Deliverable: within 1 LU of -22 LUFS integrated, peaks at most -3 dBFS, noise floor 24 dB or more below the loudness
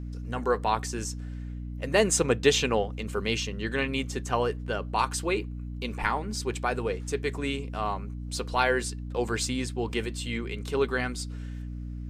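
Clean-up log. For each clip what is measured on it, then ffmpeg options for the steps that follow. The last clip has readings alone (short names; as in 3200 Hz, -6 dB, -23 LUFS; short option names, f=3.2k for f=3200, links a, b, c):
hum 60 Hz; harmonics up to 300 Hz; hum level -34 dBFS; loudness -29.0 LUFS; peak -8.0 dBFS; loudness target -22.0 LUFS
-> -af "bandreject=f=60:t=h:w=6,bandreject=f=120:t=h:w=6,bandreject=f=180:t=h:w=6,bandreject=f=240:t=h:w=6,bandreject=f=300:t=h:w=6"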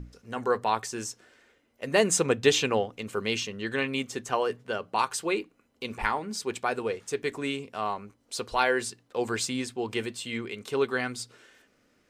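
hum none; loudness -29.0 LUFS; peak -8.0 dBFS; loudness target -22.0 LUFS
-> -af "volume=7dB,alimiter=limit=-3dB:level=0:latency=1"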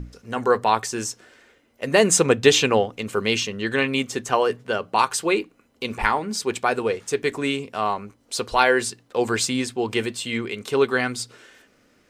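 loudness -22.5 LUFS; peak -3.0 dBFS; noise floor -61 dBFS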